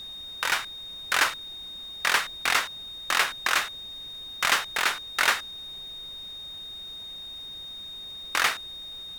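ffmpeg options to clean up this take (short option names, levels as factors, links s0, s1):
-af "bandreject=f=3700:w=30,afftdn=nr=30:nf=-40"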